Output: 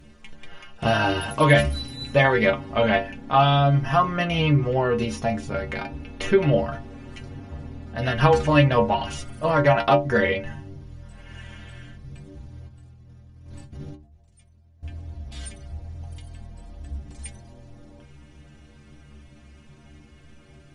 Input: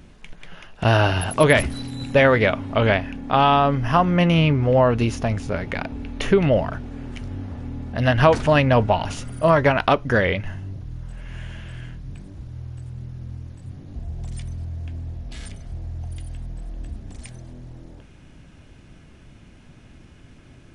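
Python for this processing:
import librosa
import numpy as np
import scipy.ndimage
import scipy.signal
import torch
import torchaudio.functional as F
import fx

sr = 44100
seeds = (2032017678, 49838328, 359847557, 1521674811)

y = fx.over_compress(x, sr, threshold_db=-39.0, ratio=-0.5, at=(12.67, 14.83))
y = fx.stiff_resonator(y, sr, f0_hz=70.0, decay_s=0.39, stiffness=0.008)
y = y * 10.0 ** (7.5 / 20.0)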